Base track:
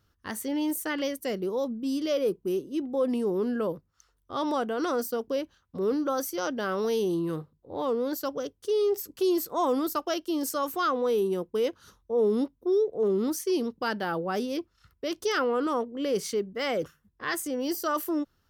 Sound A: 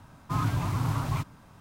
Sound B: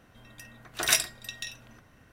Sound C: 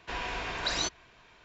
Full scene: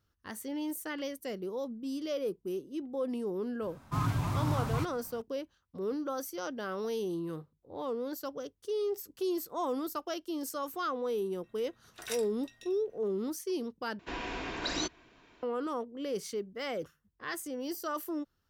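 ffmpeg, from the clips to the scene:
-filter_complex "[0:a]volume=0.422[s0];[2:a]asplit=2[s1][s2];[s2]adelay=18,volume=0.237[s3];[s1][s3]amix=inputs=2:normalize=0[s4];[3:a]equalizer=f=290:t=o:w=0.94:g=12[s5];[s0]asplit=2[s6][s7];[s6]atrim=end=13.994[s8];[s5]atrim=end=1.44,asetpts=PTS-STARTPTS,volume=0.596[s9];[s7]atrim=start=15.426[s10];[1:a]atrim=end=1.6,asetpts=PTS-STARTPTS,volume=0.708,afade=t=in:d=0.004:c=hsin,afade=t=out:st=1.596:d=0.004:c=hsin,adelay=3620[s11];[s4]atrim=end=2.12,asetpts=PTS-STARTPTS,volume=0.141,afade=t=in:d=0.004:c=hsin,afade=t=out:st=2.116:d=0.004:c=hsin,adelay=11190[s12];[s8][s9]acrossfade=d=0.004:c1=hsin:c2=hsin[s13];[s13][s10]acrossfade=d=0.004:c1=hsin:c2=hsin[s14];[s14][s11][s12]amix=inputs=3:normalize=0"

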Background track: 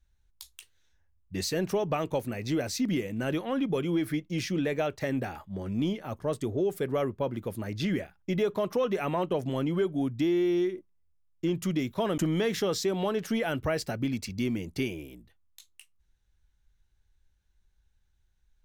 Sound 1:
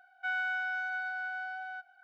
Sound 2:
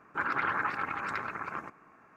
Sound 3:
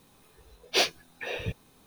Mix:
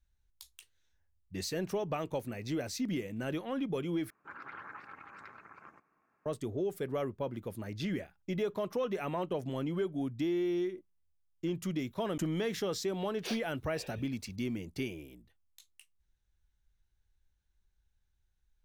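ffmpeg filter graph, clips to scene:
-filter_complex "[0:a]volume=0.501,asplit=2[s0][s1];[s0]atrim=end=4.104[s2];[2:a]atrim=end=2.16,asetpts=PTS-STARTPTS,volume=0.15[s3];[s1]atrim=start=6.256[s4];[3:a]atrim=end=1.86,asetpts=PTS-STARTPTS,volume=0.141,afade=t=in:d=0.004:c=hsin,afade=t=out:st=1.856:d=0.004:c=hsin,adelay=12500[s5];[s2][s3]acrossfade=d=0.004:c1=hsin:c2=hsin[s6];[s6][s4]acrossfade=d=0.004:c1=hsin:c2=hsin[s7];[s7][s5]amix=inputs=2:normalize=0"

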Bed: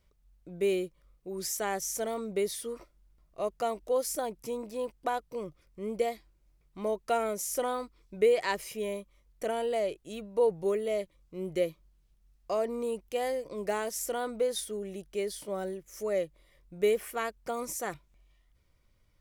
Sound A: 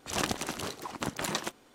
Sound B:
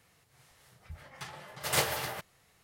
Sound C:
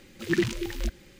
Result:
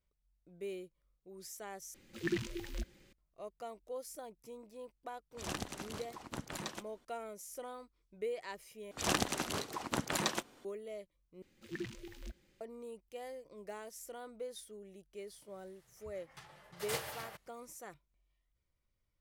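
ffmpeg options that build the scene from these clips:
-filter_complex "[3:a]asplit=2[s0][s1];[1:a]asplit=2[s2][s3];[0:a]volume=0.188[s4];[s2]lowshelf=f=130:g=8.5[s5];[s4]asplit=4[s6][s7][s8][s9];[s6]atrim=end=1.944[s10];[s0]atrim=end=1.19,asetpts=PTS-STARTPTS,volume=0.299[s11];[s7]atrim=start=3.126:end=8.914[s12];[s3]atrim=end=1.74,asetpts=PTS-STARTPTS,volume=0.841[s13];[s8]atrim=start=10.646:end=11.424[s14];[s1]atrim=end=1.19,asetpts=PTS-STARTPTS,volume=0.133[s15];[s9]atrim=start=12.606[s16];[s5]atrim=end=1.74,asetpts=PTS-STARTPTS,volume=0.299,afade=t=in:d=0.004:c=hsin,afade=t=out:st=1.736:d=0.004:c=hsin,adelay=5310[s17];[2:a]atrim=end=2.63,asetpts=PTS-STARTPTS,volume=0.282,afade=t=in:d=0.004:c=hsin,afade=t=out:st=2.626:d=0.004:c=hsin,adelay=15160[s18];[s10][s11]acrossfade=d=0.004:c1=hsin:c2=hsin[s19];[s19][s12]acrossfade=d=0.004:c1=hsin:c2=hsin[s20];[s20][s13]acrossfade=d=0.004:c1=hsin:c2=hsin[s21];[s21][s14]acrossfade=d=0.004:c1=hsin:c2=hsin[s22];[s22][s15]acrossfade=d=0.004:c1=hsin:c2=hsin[s23];[s23][s16]acrossfade=d=0.004:c1=hsin:c2=hsin[s24];[s24][s17][s18]amix=inputs=3:normalize=0"

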